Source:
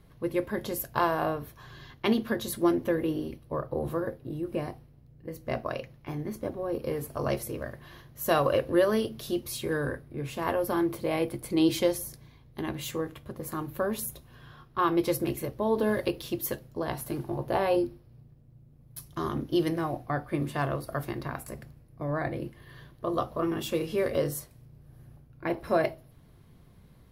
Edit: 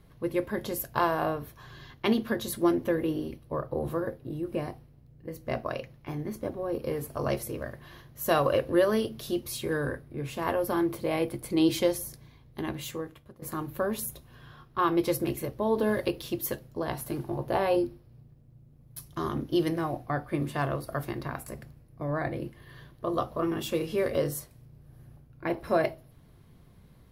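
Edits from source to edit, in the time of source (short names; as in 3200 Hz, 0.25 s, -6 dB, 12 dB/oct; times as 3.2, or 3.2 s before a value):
12.69–13.42 fade out, to -15 dB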